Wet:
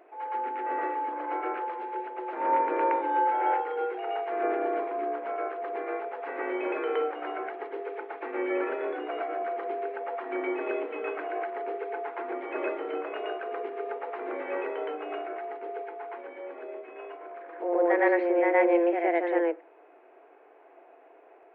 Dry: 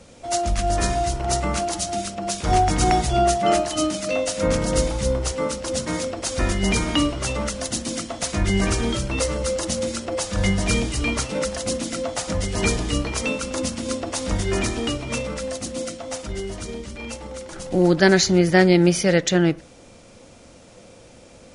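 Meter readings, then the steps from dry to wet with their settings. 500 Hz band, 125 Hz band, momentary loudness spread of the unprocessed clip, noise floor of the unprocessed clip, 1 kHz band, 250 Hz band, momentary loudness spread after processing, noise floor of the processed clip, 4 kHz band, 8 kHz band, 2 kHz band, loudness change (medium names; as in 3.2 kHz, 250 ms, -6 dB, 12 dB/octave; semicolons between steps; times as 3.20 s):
-5.0 dB, under -40 dB, 12 LU, -47 dBFS, -3.0 dB, -11.5 dB, 13 LU, -55 dBFS, -25.5 dB, under -40 dB, -7.5 dB, -8.0 dB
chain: mistuned SSB +170 Hz 150–2100 Hz; reverse echo 117 ms -3.5 dB; trim -8 dB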